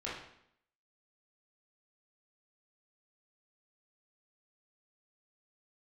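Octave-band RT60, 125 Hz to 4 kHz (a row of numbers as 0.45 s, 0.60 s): 0.70 s, 0.80 s, 0.70 s, 0.70 s, 0.70 s, 0.65 s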